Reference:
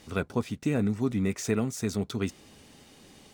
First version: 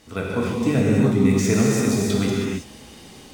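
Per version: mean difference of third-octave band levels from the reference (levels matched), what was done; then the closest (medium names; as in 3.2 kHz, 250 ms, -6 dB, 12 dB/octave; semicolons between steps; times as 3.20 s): 6.5 dB: level rider gain up to 4.5 dB; gated-style reverb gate 350 ms flat, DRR -4.5 dB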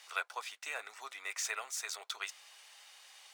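16.0 dB: Bessel high-pass 1.2 kHz, order 6; treble shelf 5.8 kHz -4.5 dB; trim +2.5 dB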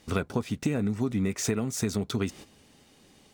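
3.0 dB: gate -46 dBFS, range -13 dB; compression, threshold -33 dBFS, peak gain reduction 11.5 dB; trim +8.5 dB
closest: third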